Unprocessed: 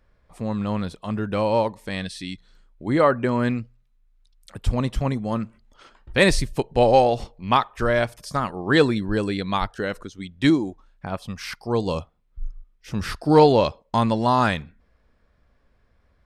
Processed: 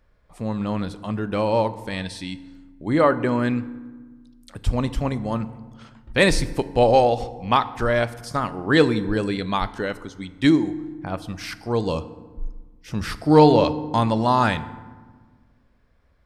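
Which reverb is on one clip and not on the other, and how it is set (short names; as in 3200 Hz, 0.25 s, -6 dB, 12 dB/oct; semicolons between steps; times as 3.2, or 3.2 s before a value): FDN reverb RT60 1.4 s, low-frequency decay 1.5×, high-frequency decay 0.55×, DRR 13 dB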